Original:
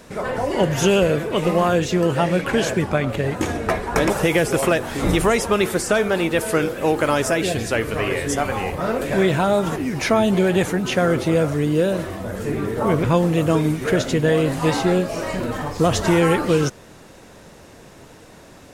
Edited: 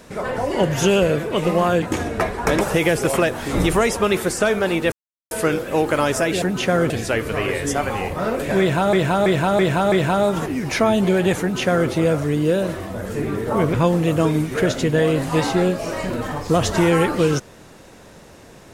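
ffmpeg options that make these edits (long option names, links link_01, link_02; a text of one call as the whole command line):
ffmpeg -i in.wav -filter_complex "[0:a]asplit=9[link_01][link_02][link_03][link_04][link_05][link_06][link_07][link_08][link_09];[link_01]atrim=end=1.822[link_10];[link_02]atrim=start=3.308:end=6.41,asetpts=PTS-STARTPTS,afade=type=out:start_time=3.098:duration=0.004:curve=hsin,apad=pad_dur=0.39[link_11];[link_03]atrim=start=6.41:end=7.522,asetpts=PTS-STARTPTS,afade=type=in:duration=0.004:curve=hsin[link_12];[link_04]atrim=start=10.708:end=11.192[link_13];[link_05]atrim=start=7.518:end=9.552[link_14];[link_06]atrim=start=9.218:end=9.552[link_15];[link_07]atrim=start=9.218:end=9.552[link_16];[link_08]atrim=start=9.218:end=9.552[link_17];[link_09]atrim=start=9.218[link_18];[link_11][link_12]concat=n=2:v=0:a=1[link_19];[link_10][link_19]acrossfade=duration=0.004:curve1=hsin:curve2=hsin[link_20];[link_20][link_13]acrossfade=duration=0.004:curve1=hsin:curve2=hsin[link_21];[link_21][link_14]acrossfade=duration=0.004:curve1=hsin:curve2=hsin[link_22];[link_22][link_15]acrossfade=duration=0.004:curve1=hsin:curve2=hsin[link_23];[link_23][link_16]acrossfade=duration=0.004:curve1=hsin:curve2=hsin[link_24];[link_24][link_17]acrossfade=duration=0.004:curve1=hsin:curve2=hsin[link_25];[link_25][link_18]acrossfade=duration=0.004:curve1=hsin:curve2=hsin" out.wav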